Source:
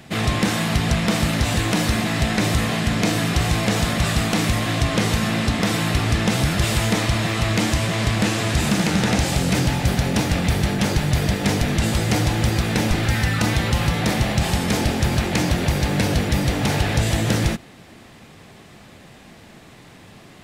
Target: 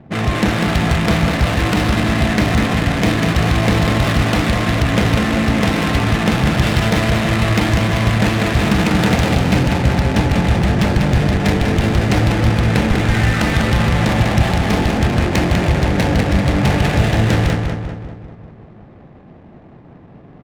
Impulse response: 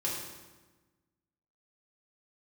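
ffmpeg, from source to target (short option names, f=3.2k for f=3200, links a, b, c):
-af "aecho=1:1:196|392|588|784|980|1176|1372|1568:0.631|0.353|0.198|0.111|0.0621|0.0347|0.0195|0.0109,adynamicsmooth=sensitivity=2.5:basefreq=710,volume=3.5dB"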